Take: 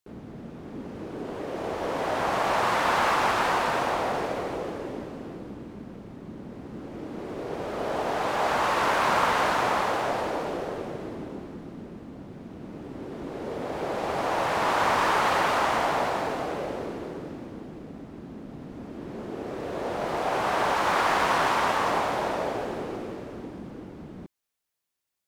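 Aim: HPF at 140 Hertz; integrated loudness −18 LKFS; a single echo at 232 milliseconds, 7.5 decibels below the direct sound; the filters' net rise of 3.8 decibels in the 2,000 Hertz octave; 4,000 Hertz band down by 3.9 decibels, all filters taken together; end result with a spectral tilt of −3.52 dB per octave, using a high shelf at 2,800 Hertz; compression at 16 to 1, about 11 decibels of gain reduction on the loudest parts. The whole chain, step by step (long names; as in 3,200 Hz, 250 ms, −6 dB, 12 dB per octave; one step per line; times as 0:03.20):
high-pass filter 140 Hz
parametric band 2,000 Hz +7.5 dB
high-shelf EQ 2,800 Hz −4 dB
parametric band 4,000 Hz −5.5 dB
downward compressor 16 to 1, threshold −29 dBFS
single-tap delay 232 ms −7.5 dB
level +16 dB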